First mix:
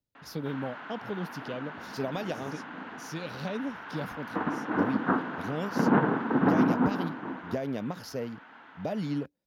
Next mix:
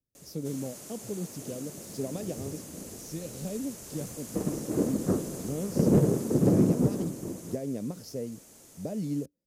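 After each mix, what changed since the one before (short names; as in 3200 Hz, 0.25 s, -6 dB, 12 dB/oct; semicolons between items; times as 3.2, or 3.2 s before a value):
background: remove speaker cabinet 220–2700 Hz, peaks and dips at 260 Hz +6 dB, 380 Hz -5 dB, 570 Hz -7 dB, 940 Hz +5 dB, 1500 Hz +10 dB, 2400 Hz -5 dB; master: add band shelf 1700 Hz -12.5 dB 2.8 oct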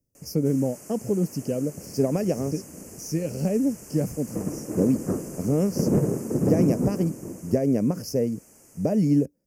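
speech +11.5 dB; master: add Butterworth band-stop 3700 Hz, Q 1.7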